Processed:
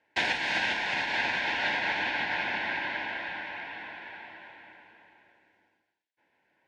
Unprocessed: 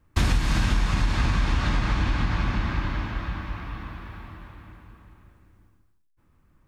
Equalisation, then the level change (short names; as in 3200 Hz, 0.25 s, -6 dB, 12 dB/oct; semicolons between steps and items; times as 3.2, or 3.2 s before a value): BPF 800–2700 Hz; Butterworth band-stop 1200 Hz, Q 1.9; +8.0 dB